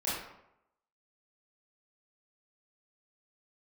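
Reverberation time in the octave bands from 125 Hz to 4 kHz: 0.80, 0.75, 0.80, 0.80, 0.65, 0.50 s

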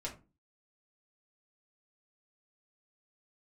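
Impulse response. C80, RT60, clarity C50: 18.0 dB, 0.30 s, 12.0 dB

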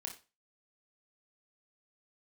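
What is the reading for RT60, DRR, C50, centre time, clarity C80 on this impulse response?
0.30 s, 1.0 dB, 9.5 dB, 18 ms, 16.0 dB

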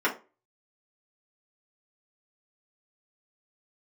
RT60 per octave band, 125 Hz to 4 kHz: 0.30, 0.30, 0.35, 0.30, 0.25, 0.20 s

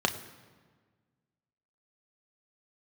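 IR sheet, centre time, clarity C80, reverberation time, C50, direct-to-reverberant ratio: 13 ms, 14.0 dB, 1.5 s, 13.0 dB, 5.0 dB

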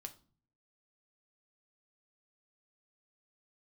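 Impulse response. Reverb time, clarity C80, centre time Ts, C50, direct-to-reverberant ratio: 0.40 s, 21.0 dB, 6 ms, 15.5 dB, 5.5 dB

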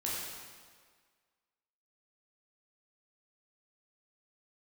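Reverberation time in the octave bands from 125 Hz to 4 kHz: 1.5, 1.6, 1.7, 1.7, 1.6, 1.5 s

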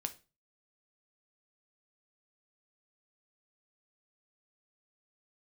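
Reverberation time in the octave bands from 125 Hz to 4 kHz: 0.50, 0.40, 0.35, 0.30, 0.30, 0.30 s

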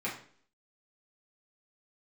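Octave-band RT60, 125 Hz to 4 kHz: 0.50, 0.60, 0.55, 0.50, 0.50, 0.50 s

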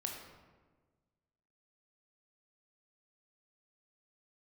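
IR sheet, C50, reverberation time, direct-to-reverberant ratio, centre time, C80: 3.5 dB, 1.4 s, 0.5 dB, 49 ms, 5.5 dB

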